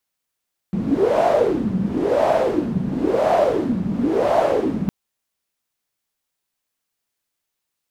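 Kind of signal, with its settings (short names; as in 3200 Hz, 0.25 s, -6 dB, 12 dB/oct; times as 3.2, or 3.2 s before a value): wind-like swept noise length 4.16 s, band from 190 Hz, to 670 Hz, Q 7, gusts 4, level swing 6 dB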